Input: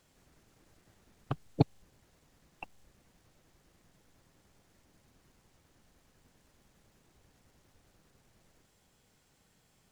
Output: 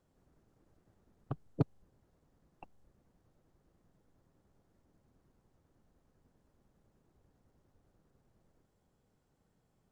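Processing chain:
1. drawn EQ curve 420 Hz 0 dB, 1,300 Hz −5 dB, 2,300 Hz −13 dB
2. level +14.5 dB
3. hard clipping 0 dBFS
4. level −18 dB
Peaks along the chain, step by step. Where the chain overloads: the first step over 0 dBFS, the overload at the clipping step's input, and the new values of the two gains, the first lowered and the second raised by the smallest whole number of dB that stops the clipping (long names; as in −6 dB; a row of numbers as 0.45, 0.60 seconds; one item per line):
−10.0, +4.5, 0.0, −18.0 dBFS
step 2, 4.5 dB
step 2 +9.5 dB, step 4 −13 dB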